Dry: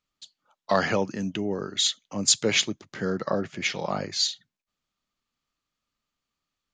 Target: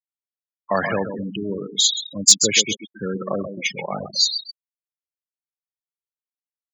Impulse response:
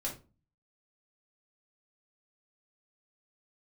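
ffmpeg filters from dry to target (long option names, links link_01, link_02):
-filter_complex "[0:a]asplit=2[link_01][link_02];[link_02]aecho=0:1:132|264|396|528|660:0.422|0.177|0.0744|0.0312|0.0131[link_03];[link_01][link_03]amix=inputs=2:normalize=0,afftfilt=real='re*gte(hypot(re,im),0.0794)':imag='im*gte(hypot(re,im),0.0794)':win_size=1024:overlap=0.75,crystalizer=i=2.5:c=0,asoftclip=type=hard:threshold=-2.5dB,volume=1dB"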